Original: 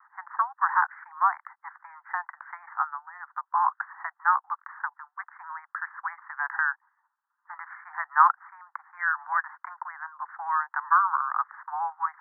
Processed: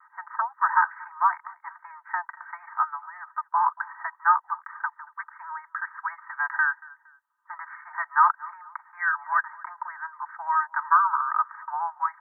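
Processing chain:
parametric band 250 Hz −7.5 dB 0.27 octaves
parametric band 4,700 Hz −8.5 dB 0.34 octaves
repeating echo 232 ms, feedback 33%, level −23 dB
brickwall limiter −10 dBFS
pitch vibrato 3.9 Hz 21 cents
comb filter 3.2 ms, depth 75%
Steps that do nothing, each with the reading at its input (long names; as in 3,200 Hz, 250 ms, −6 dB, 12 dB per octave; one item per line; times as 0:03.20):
parametric band 250 Hz: nothing at its input below 680 Hz
parametric band 4,700 Hz: nothing at its input above 2,200 Hz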